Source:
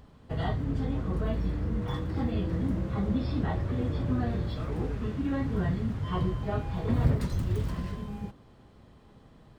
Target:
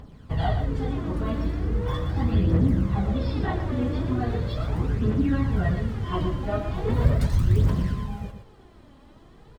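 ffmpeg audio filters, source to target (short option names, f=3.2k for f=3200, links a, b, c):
-af "aphaser=in_gain=1:out_gain=1:delay=3.7:decay=0.54:speed=0.39:type=triangular,aecho=1:1:121:0.376,volume=3dB"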